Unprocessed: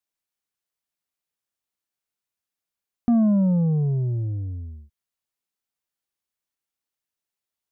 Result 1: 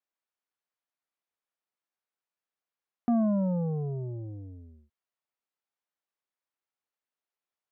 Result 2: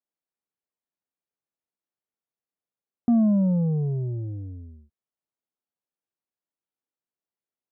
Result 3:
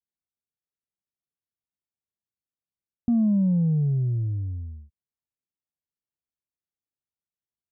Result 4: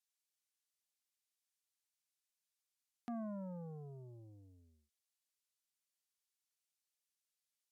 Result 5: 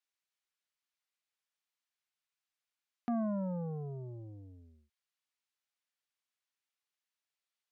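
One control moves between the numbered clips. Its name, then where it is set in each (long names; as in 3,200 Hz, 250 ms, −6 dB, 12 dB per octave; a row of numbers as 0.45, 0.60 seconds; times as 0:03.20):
resonant band-pass, frequency: 890, 350, 100, 7,100, 2,500 Hertz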